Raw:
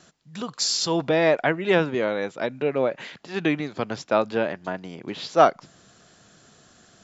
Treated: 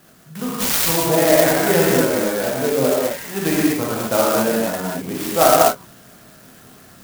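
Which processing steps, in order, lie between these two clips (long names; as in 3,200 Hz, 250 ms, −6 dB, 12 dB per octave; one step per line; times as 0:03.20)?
in parallel at −3 dB: downward compressor, threshold −28 dBFS, peak gain reduction 17 dB
on the sum: reverb whose tail is shaped and stops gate 270 ms flat, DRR −7 dB
converter with an unsteady clock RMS 0.079 ms
level −3 dB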